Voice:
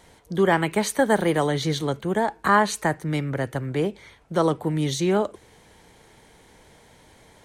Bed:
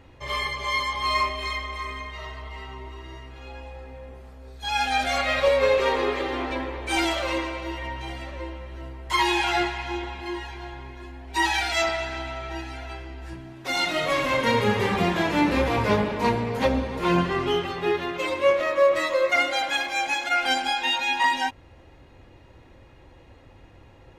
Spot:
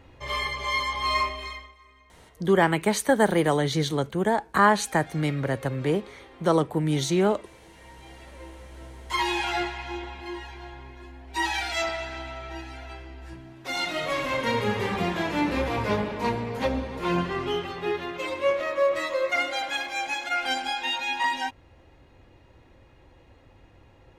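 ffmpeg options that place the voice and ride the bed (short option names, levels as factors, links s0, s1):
-filter_complex "[0:a]adelay=2100,volume=0.944[s0];[1:a]volume=7.08,afade=t=out:st=1.17:d=0.58:silence=0.0891251,afade=t=in:st=7.69:d=1.5:silence=0.125893[s1];[s0][s1]amix=inputs=2:normalize=0"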